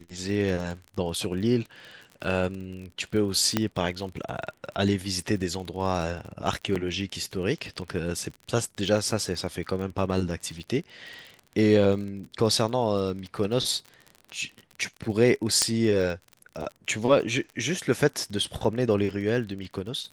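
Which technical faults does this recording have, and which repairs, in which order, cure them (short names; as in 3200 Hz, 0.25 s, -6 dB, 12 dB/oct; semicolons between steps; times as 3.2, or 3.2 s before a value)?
crackle 38/s -34 dBFS
3.57 pop -8 dBFS
6.75–6.76 gap 6 ms
15.62 pop -6 dBFS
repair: de-click; interpolate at 6.75, 6 ms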